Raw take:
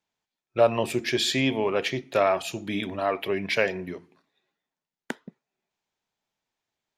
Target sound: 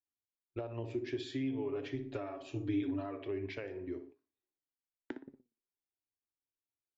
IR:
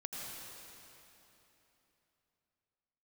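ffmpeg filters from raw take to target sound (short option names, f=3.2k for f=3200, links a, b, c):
-filter_complex "[0:a]asettb=1/sr,asplit=3[a][b][c];[a]atrim=end=1.194[d];[b]atrim=start=1.19:end=3.2,asetpts=PTS-STARTPTS,afade=t=in:d=0.004:c=qsin,afade=t=out:st=2.006:d=0.004:c=qsin,aecho=1:1:7:0.84,atrim=end_sample=88641[e];[c]atrim=start=3.196[f];[d][e]acrossfade=d=0.004:c1=hsin:c2=qsin[g];[g][f]acrossfade=d=0.004:c1=qsin:c2=hsin,asplit=2[h][i];[i]adelay=60,lowpass=f=1.3k:p=1,volume=-8dB,asplit=2[j][k];[k]adelay=60,lowpass=f=1.3k:p=1,volume=0.42,asplit=2[l][m];[m]adelay=60,lowpass=f=1.3k:p=1,volume=0.42,asplit=2[n][o];[o]adelay=60,lowpass=f=1.3k:p=1,volume=0.42,asplit=2[p][q];[q]adelay=60,lowpass=f=1.3k:p=1,volume=0.42[r];[h][j][l][n][p][r]amix=inputs=6:normalize=0,agate=range=-12dB:threshold=-50dB:ratio=16:detection=peak,flanger=delay=7.2:depth=1.7:regen=80:speed=1.7:shape=sinusoidal,acompressor=threshold=-32dB:ratio=6,lowshelf=f=120:g=-8.5,aresample=16000,aresample=44100,firequalizer=gain_entry='entry(100,0);entry(180,-27);entry(290,-4);entry(520,-19);entry(6300,-27)':delay=0.05:min_phase=1,volume=10.5dB"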